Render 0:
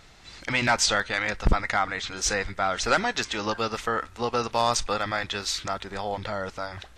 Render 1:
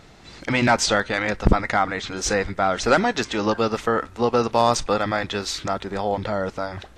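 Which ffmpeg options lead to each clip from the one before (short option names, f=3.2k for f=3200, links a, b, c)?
-af "equalizer=f=270:w=0.33:g=9.5"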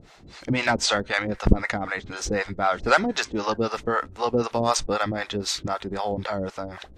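-filter_complex "[0:a]acrossover=split=530[a][b];[a]aeval=exprs='val(0)*(1-1/2+1/2*cos(2*PI*3.9*n/s))':c=same[c];[b]aeval=exprs='val(0)*(1-1/2-1/2*cos(2*PI*3.9*n/s))':c=same[d];[c][d]amix=inputs=2:normalize=0,volume=2dB"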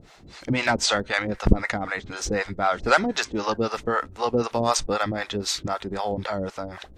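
-af "highshelf=f=11k:g=4.5"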